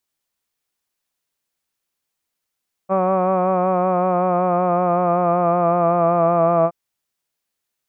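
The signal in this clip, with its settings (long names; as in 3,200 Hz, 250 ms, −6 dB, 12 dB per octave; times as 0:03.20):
vowel by formant synthesis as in hud, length 3.82 s, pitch 188 Hz, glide −2 semitones, vibrato depth 0.4 semitones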